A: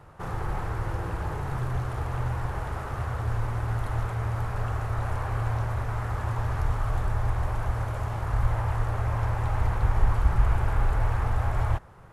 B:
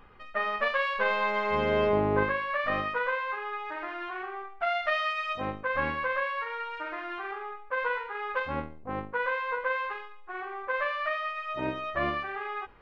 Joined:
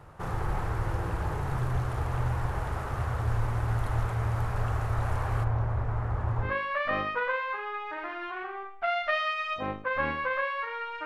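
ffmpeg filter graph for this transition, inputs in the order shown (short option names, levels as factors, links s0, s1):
-filter_complex "[0:a]asplit=3[s0][s1][s2];[s0]afade=t=out:st=5.43:d=0.02[s3];[s1]lowpass=f=1100:p=1,afade=t=in:st=5.43:d=0.02,afade=t=out:st=6.54:d=0.02[s4];[s2]afade=t=in:st=6.54:d=0.02[s5];[s3][s4][s5]amix=inputs=3:normalize=0,apad=whole_dur=11.05,atrim=end=11.05,atrim=end=6.54,asetpts=PTS-STARTPTS[s6];[1:a]atrim=start=2.19:end=6.84,asetpts=PTS-STARTPTS[s7];[s6][s7]acrossfade=d=0.14:c1=tri:c2=tri"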